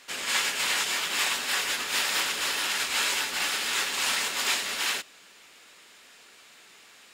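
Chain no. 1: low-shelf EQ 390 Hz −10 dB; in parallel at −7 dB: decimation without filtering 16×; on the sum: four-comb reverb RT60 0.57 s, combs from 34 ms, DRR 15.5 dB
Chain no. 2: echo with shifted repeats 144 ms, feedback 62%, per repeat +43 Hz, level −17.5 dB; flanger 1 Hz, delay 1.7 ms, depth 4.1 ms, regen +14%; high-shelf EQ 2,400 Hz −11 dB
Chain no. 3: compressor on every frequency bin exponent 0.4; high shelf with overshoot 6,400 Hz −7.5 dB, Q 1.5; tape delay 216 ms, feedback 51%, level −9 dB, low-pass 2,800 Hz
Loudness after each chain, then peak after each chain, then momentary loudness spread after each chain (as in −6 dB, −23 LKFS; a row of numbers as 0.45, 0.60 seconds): −25.5, −35.0, −21.5 LKFS; −10.5, −21.0, −8.5 dBFS; 2, 2, 10 LU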